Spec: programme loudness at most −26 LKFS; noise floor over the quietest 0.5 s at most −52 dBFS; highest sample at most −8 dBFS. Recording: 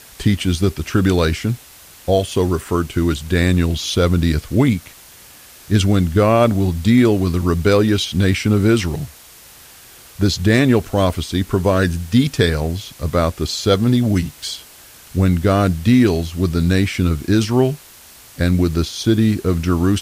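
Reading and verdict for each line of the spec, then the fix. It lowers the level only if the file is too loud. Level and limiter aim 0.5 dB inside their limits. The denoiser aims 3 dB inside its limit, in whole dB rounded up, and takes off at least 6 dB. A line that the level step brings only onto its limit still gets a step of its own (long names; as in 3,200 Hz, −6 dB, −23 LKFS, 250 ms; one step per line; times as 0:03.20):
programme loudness −17.5 LKFS: out of spec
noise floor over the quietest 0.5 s −43 dBFS: out of spec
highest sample −2.0 dBFS: out of spec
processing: broadband denoise 6 dB, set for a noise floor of −43 dBFS
level −9 dB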